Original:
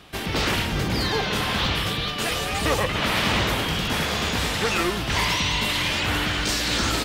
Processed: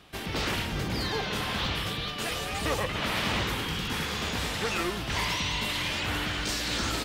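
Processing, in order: 3.43–4.22 s: peaking EQ 640 Hz -14.5 dB 0.22 oct; trim -6.5 dB

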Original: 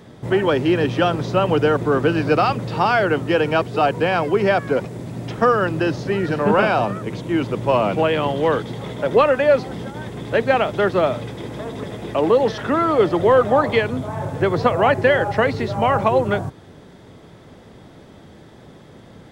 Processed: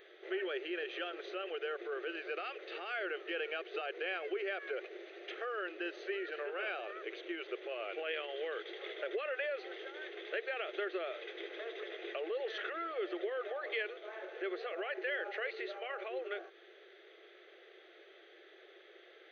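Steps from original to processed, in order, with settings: peaking EQ 500 Hz -5.5 dB 1.1 oct; peak limiter -16 dBFS, peak gain reduction 9.5 dB; compression, threshold -26 dBFS, peak gain reduction 6.5 dB; brick-wall FIR band-pass 340–6400 Hz; static phaser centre 2.3 kHz, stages 4; trim -3.5 dB

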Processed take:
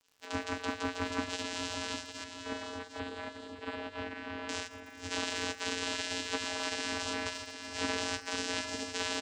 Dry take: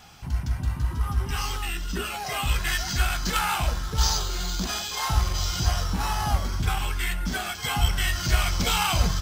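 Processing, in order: spectral gate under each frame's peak -30 dB weak; peaking EQ 3.8 kHz +3.5 dB 0.63 oct; peak limiter -29.5 dBFS, peak gain reduction 10.5 dB; vocoder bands 8, square 89.6 Hz; crackle 110 per s -56 dBFS; 2.24–4.49 s: distance through air 500 m; feedback delay 756 ms, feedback 36%, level -9 dB; reverberation RT60 1.2 s, pre-delay 4 ms, DRR 16.5 dB; trim +7.5 dB

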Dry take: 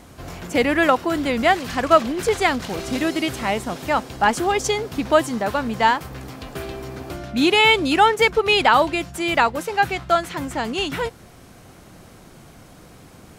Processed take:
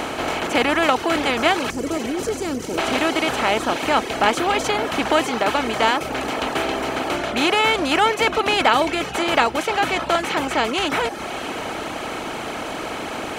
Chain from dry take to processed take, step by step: spectral levelling over time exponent 0.4; 1.70–2.78 s: high-order bell 1.6 kHz -15 dB 2.9 oct; on a send: echo that smears into a reverb 627 ms, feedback 45%, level -13.5 dB; on the sum: reverb removal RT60 0.77 s; trim -6 dB

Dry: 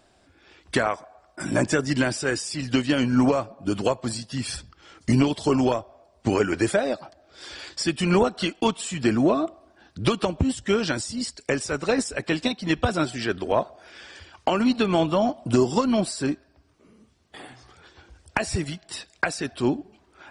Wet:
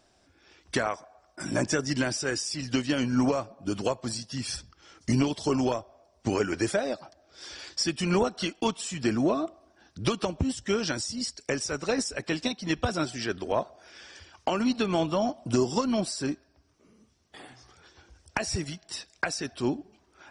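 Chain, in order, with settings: peaking EQ 5.7 kHz +9 dB 0.36 oct; trim -5 dB

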